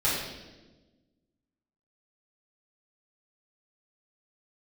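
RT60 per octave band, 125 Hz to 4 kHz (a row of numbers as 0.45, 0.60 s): 1.7, 1.8, 1.4, 1.0, 1.0, 1.0 s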